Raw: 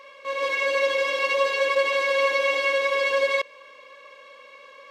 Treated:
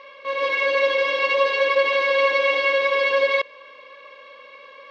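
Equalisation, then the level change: low-pass 4.7 kHz 24 dB/octave; +3.0 dB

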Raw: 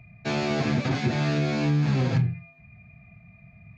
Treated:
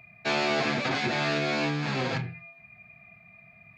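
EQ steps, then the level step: bass shelf 140 Hz -11 dB; bass shelf 330 Hz -12 dB; peaking EQ 6.2 kHz -5 dB 0.48 oct; +5.0 dB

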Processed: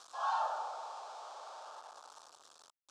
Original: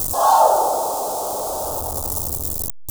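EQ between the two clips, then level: ladder band-pass 2.1 kHz, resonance 35%; distance through air 89 m; +1.0 dB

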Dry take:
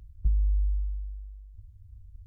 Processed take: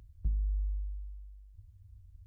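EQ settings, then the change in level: bass shelf 62 Hz -11.5 dB; 0.0 dB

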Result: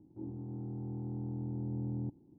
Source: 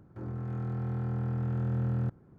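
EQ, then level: cascade formant filter u; +5.0 dB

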